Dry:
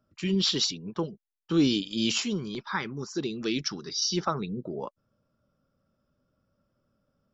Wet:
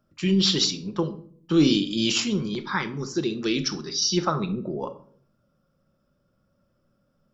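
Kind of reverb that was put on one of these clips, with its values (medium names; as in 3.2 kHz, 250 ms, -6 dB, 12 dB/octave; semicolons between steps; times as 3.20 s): simulated room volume 650 m³, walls furnished, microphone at 0.9 m; trim +3.5 dB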